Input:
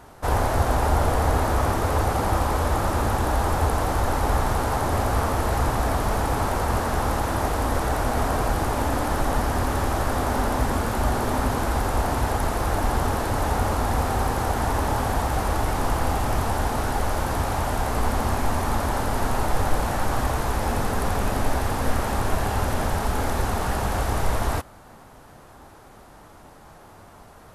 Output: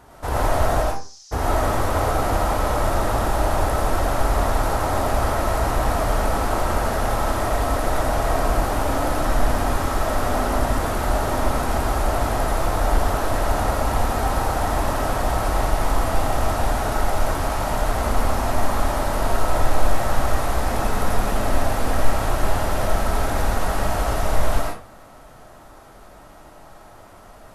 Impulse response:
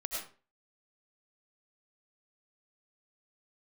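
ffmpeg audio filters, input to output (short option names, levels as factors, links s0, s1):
-filter_complex "[0:a]asplit=3[s0][s1][s2];[s0]afade=t=out:st=0.81:d=0.02[s3];[s1]asuperpass=centerf=5600:order=4:qfactor=3.3,afade=t=in:st=0.81:d=0.02,afade=t=out:st=1.31:d=0.02[s4];[s2]afade=t=in:st=1.31:d=0.02[s5];[s3][s4][s5]amix=inputs=3:normalize=0[s6];[1:a]atrim=start_sample=2205[s7];[s6][s7]afir=irnorm=-1:irlink=0"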